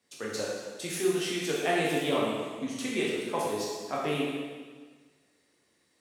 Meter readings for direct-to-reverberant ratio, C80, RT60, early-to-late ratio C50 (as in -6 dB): -5.5 dB, 1.5 dB, 1.5 s, -0.5 dB